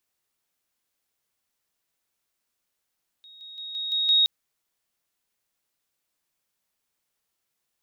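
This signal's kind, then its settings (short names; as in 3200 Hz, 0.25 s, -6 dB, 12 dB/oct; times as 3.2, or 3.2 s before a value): level ladder 3760 Hz -46 dBFS, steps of 6 dB, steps 6, 0.17 s 0.00 s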